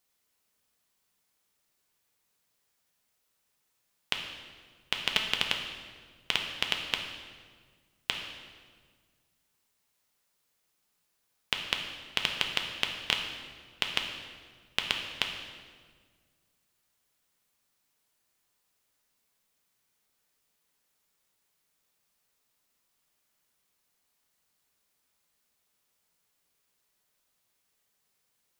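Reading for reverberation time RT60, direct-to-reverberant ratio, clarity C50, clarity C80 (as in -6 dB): 1.6 s, 2.0 dB, 5.0 dB, 6.5 dB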